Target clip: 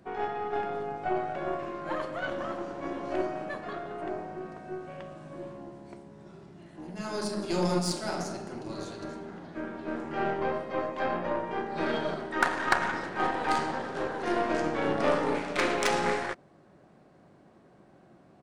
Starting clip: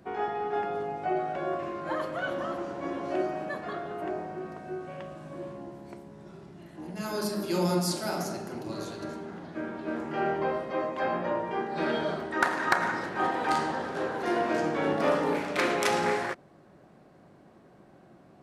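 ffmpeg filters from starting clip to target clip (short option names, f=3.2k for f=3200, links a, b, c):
-af "aresample=22050,aresample=44100,aeval=exprs='0.299*(cos(1*acos(clip(val(0)/0.299,-1,1)))-cos(1*PI/2))+0.00841*(cos(7*acos(clip(val(0)/0.299,-1,1)))-cos(7*PI/2))+0.015*(cos(8*acos(clip(val(0)/0.299,-1,1)))-cos(8*PI/2))':c=same"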